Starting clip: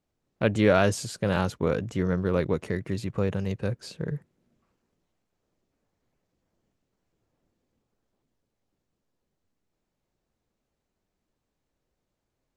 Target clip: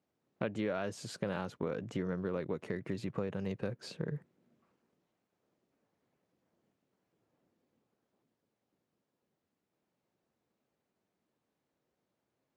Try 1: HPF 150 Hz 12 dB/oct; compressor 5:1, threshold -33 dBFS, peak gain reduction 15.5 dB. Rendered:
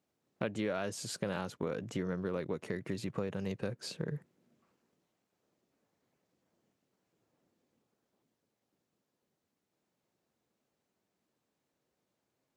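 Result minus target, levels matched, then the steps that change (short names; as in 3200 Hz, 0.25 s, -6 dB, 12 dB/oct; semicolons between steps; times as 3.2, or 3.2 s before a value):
8000 Hz band +7.0 dB
add after compressor: high shelf 5000 Hz -10.5 dB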